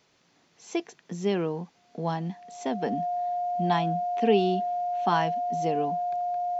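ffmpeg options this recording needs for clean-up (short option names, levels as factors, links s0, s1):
-af "bandreject=f=710:w=30"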